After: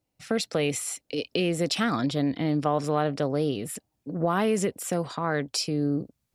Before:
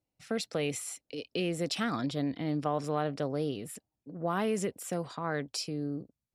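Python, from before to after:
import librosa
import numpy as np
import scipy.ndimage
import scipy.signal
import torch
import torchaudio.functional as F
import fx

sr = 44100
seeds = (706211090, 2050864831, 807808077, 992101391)

y = fx.recorder_agc(x, sr, target_db=-22.0, rise_db_per_s=6.9, max_gain_db=30)
y = F.gain(torch.from_numpy(y), 6.0).numpy()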